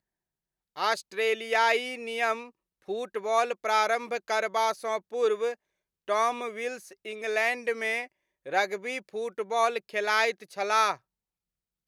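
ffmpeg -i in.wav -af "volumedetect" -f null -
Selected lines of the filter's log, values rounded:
mean_volume: -29.6 dB
max_volume: -10.8 dB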